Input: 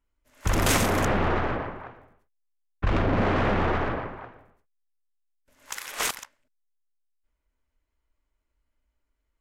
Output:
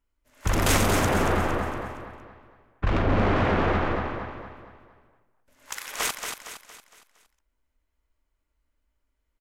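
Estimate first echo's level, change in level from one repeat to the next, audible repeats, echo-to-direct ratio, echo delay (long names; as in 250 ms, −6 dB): −6.5 dB, −7.0 dB, 4, −5.5 dB, 231 ms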